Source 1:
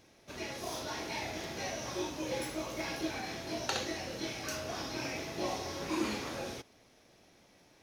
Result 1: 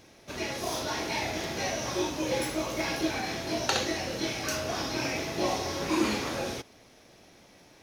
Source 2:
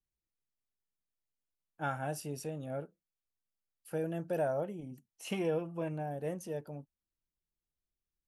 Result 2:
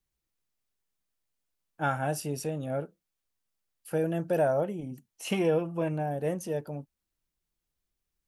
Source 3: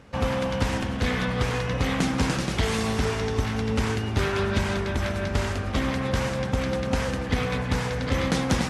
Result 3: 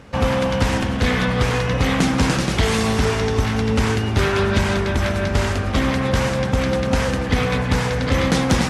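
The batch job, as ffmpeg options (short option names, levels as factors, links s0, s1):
-af "asoftclip=type=tanh:threshold=0.251,volume=2.24"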